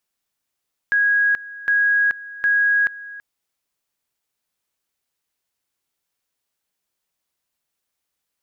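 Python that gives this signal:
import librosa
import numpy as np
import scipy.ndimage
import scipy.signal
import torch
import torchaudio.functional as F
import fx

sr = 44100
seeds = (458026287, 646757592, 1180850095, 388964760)

y = fx.two_level_tone(sr, hz=1650.0, level_db=-14.0, drop_db=18.5, high_s=0.43, low_s=0.33, rounds=3)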